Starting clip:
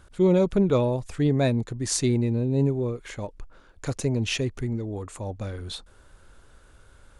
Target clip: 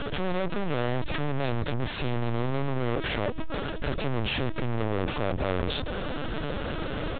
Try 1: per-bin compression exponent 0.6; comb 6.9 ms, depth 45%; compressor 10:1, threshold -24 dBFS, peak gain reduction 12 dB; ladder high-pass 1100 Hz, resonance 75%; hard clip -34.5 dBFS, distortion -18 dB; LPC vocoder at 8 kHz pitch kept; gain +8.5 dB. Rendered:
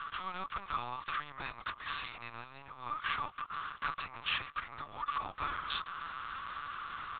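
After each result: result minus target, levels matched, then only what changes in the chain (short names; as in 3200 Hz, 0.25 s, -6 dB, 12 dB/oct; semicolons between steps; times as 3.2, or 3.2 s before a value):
compressor: peak gain reduction +7 dB; 1000 Hz band +6.5 dB
change: compressor 10:1, threshold -16 dBFS, peak gain reduction 5 dB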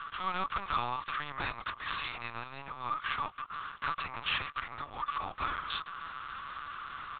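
1000 Hz band +7.0 dB
remove: ladder high-pass 1100 Hz, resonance 75%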